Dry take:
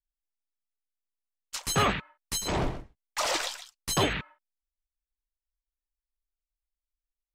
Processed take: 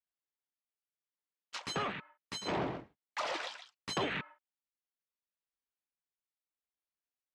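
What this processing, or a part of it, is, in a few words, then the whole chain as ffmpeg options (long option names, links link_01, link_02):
AM radio: -af "highpass=170,lowpass=3400,acompressor=threshold=-28dB:ratio=10,asoftclip=type=tanh:threshold=-23dB,tremolo=f=0.72:d=0.37"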